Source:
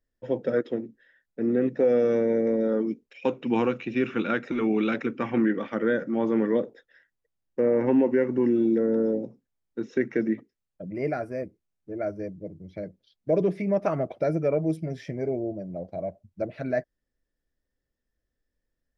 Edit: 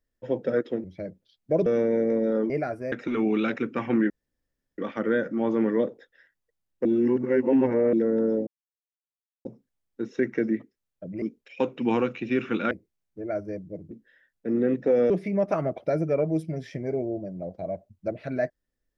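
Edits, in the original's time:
0.84–2.03 swap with 12.62–13.44
2.87–4.36 swap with 11–11.42
5.54 insert room tone 0.68 s
7.61–8.69 reverse
9.23 insert silence 0.98 s

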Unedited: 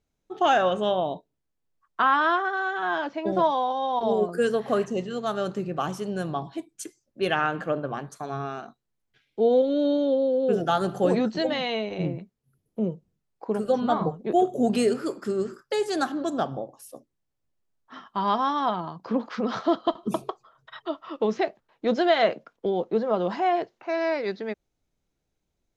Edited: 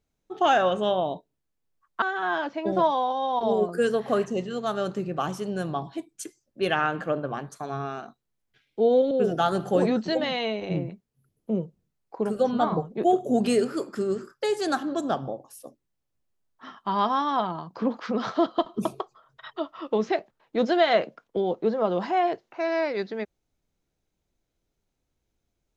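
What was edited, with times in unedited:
2.02–2.62 cut
9.71–10.4 cut

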